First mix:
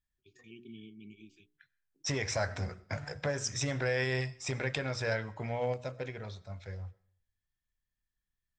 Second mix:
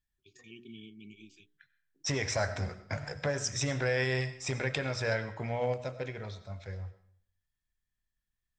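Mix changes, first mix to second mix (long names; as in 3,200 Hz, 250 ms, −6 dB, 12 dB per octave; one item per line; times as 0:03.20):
first voice: add high-shelf EQ 3,000 Hz +9.5 dB
second voice: send +9.5 dB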